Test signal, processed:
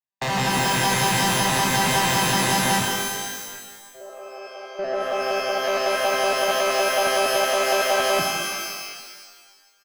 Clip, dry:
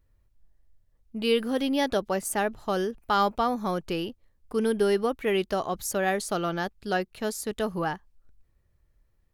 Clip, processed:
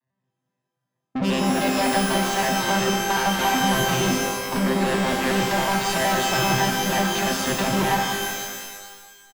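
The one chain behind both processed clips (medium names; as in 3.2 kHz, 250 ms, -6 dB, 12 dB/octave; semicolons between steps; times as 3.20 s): vocoder on a broken chord bare fifth, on C3, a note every 93 ms; expander -53 dBFS; comb 1.1 ms, depth 79%; compression, threshold -37 dBFS; overdrive pedal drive 36 dB, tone 4 kHz, clips at -25.5 dBFS; pitch-shifted reverb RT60 1.5 s, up +12 st, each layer -2 dB, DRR 1.5 dB; trim +7.5 dB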